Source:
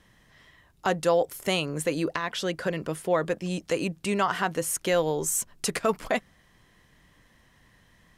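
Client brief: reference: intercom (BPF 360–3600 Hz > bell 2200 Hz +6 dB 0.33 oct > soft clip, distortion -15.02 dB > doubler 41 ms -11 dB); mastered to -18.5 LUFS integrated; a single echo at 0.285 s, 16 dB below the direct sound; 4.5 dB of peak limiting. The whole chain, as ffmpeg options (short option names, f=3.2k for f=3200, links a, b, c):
-filter_complex "[0:a]alimiter=limit=-16.5dB:level=0:latency=1,highpass=360,lowpass=3.6k,equalizer=f=2.2k:t=o:w=0.33:g=6,aecho=1:1:285:0.158,asoftclip=threshold=-21.5dB,asplit=2[a][b];[b]adelay=41,volume=-11dB[c];[a][c]amix=inputs=2:normalize=0,volume=14dB"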